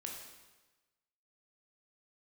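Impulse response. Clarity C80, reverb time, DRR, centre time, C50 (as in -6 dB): 5.0 dB, 1.2 s, -0.5 dB, 51 ms, 3.0 dB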